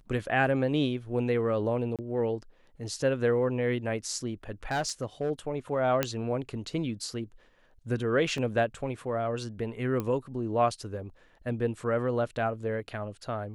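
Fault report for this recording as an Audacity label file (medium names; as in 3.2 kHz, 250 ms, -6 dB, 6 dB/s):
1.960000	1.990000	dropout 27 ms
4.710000	5.310000	clipped -24 dBFS
6.030000	6.030000	pop -10 dBFS
8.380000	8.380000	dropout 2.1 ms
10.000000	10.000000	pop -19 dBFS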